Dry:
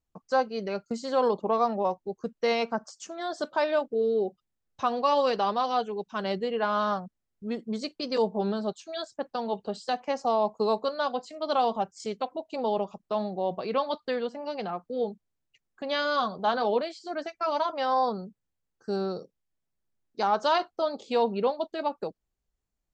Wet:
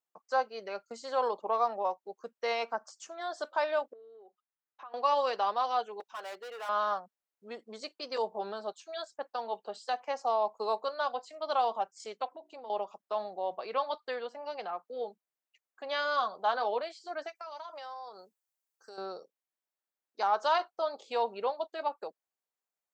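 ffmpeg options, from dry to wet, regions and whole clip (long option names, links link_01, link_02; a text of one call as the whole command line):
ffmpeg -i in.wav -filter_complex "[0:a]asettb=1/sr,asplit=3[link_01][link_02][link_03];[link_01]atrim=end=3.934[link_04];[link_02]atrim=start=3.93:end=4.94,asetpts=PTS-STARTPTS,afade=type=in:duration=0.004:curve=qsin,afade=type=out:start_time=1.006:duration=0.004:curve=qsin,equalizer=frequency=590:width=1.8:gain=-8,acompressor=threshold=-40dB:ratio=8:attack=3.2:release=140:knee=1:detection=peak,highpass=360,lowpass=2100[link_05];[link_03]atrim=start=4.936[link_06];[link_04][link_05]acrossfade=duration=0.004:curve1=hsin:curve2=qsin[link_07];[link_07][link_06]acrossfade=duration=0.004:curve1=qsin:curve2=hsin,asettb=1/sr,asplit=3[link_08][link_09][link_10];[link_08]atrim=end=6.004[link_11];[link_09]atrim=start=6:end=6.69,asetpts=PTS-STARTPTS,afade=type=in:duration=0.004:curve=qsin,afade=type=out:start_time=0.686:duration=0.004:curve=qsin,highpass=450,asoftclip=type=hard:threshold=-34dB[link_12];[link_10]atrim=start=6.686[link_13];[link_11][link_12]acrossfade=duration=0.004:curve1=hsin:curve2=qsin[link_14];[link_14][link_13]acrossfade=duration=0.004:curve1=qsin:curve2=hsin,asettb=1/sr,asplit=3[link_15][link_16][link_17];[link_15]atrim=end=12.284[link_18];[link_16]atrim=start=12.28:end=12.7,asetpts=PTS-STARTPTS,afade=type=in:duration=0.004:curve=qsin,afade=type=out:start_time=0.416:duration=0.004:curve=qsin,bass=frequency=250:gain=10,treble=frequency=4000:gain=-2,bandreject=frequency=60:width_type=h:width=6,bandreject=frequency=120:width_type=h:width=6,bandreject=frequency=180:width_type=h:width=6,bandreject=frequency=240:width_type=h:width=6,bandreject=frequency=300:width_type=h:width=6,bandreject=frequency=360:width_type=h:width=6,acompressor=threshold=-37dB:ratio=5:attack=3.2:release=140:knee=1:detection=peak[link_19];[link_17]atrim=start=12.696[link_20];[link_18][link_19]acrossfade=duration=0.004:curve1=hsin:curve2=qsin[link_21];[link_21][link_20]acrossfade=duration=0.004:curve1=qsin:curve2=hsin,asettb=1/sr,asplit=3[link_22][link_23][link_24];[link_22]atrim=end=17.354[link_25];[link_23]atrim=start=17.35:end=18.98,asetpts=PTS-STARTPTS,afade=type=in:duration=0.004:curve=qsin,afade=type=out:start_time=1.626:duration=0.004:curve=qsin,bass=frequency=250:gain=-12,treble=frequency=4000:gain=9,acompressor=threshold=-36dB:ratio=16:attack=3.2:release=140:knee=1:detection=peak[link_26];[link_24]atrim=start=18.976[link_27];[link_25][link_26]acrossfade=duration=0.004:curve1=hsin:curve2=qsin[link_28];[link_28][link_27]acrossfade=duration=0.004:curve1=qsin:curve2=hsin,highpass=690,equalizer=frequency=4800:width_type=o:width=2.8:gain=-5.5" out.wav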